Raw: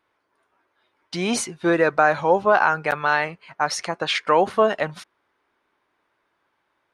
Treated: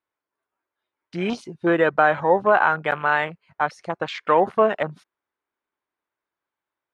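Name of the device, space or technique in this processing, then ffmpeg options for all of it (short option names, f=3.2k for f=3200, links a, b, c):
de-esser from a sidechain: -filter_complex "[0:a]afwtdn=0.0316,asplit=2[a][b];[b]highpass=f=6k:w=0.5412,highpass=f=6k:w=1.3066,apad=whole_len=305877[c];[a][c]sidechaincompress=threshold=-51dB:ratio=3:attack=2.3:release=26"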